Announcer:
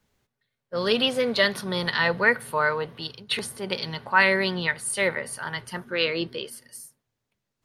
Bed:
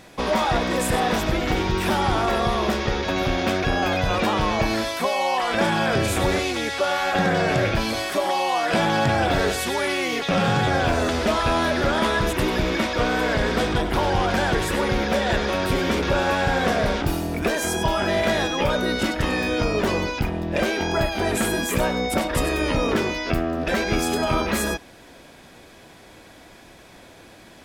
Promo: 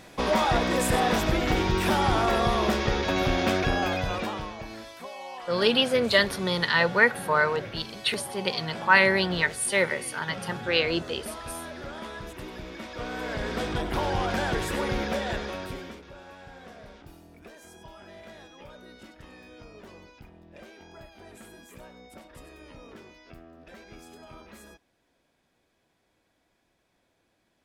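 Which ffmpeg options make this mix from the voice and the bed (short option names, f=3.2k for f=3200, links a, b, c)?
-filter_complex "[0:a]adelay=4750,volume=0.5dB[a];[1:a]volume=9.5dB,afade=t=out:st=3.56:d=0.99:silence=0.16788,afade=t=in:st=12.77:d=1.19:silence=0.266073,afade=t=out:st=15.01:d=1.01:silence=0.105925[b];[a][b]amix=inputs=2:normalize=0"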